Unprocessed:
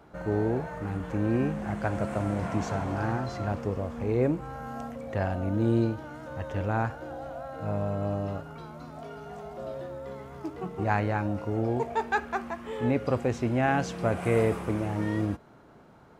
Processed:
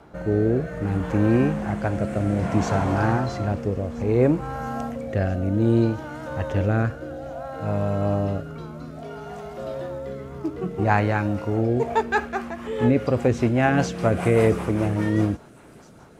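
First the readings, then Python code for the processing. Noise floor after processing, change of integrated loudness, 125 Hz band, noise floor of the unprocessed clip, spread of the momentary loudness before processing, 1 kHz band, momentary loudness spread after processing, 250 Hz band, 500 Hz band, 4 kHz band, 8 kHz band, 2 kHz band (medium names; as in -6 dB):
-47 dBFS, +6.5 dB, +7.0 dB, -53 dBFS, 13 LU, +4.5 dB, 14 LU, +7.0 dB, +6.0 dB, +6.0 dB, no reading, +5.5 dB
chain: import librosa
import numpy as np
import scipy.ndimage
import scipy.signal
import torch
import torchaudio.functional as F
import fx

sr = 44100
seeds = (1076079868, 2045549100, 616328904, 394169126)

y = fx.rotary_switch(x, sr, hz=0.6, then_hz=5.0, switch_at_s=11.41)
y = fx.echo_wet_highpass(y, sr, ms=663, feedback_pct=78, hz=5300.0, wet_db=-16)
y = y * librosa.db_to_amplitude(8.5)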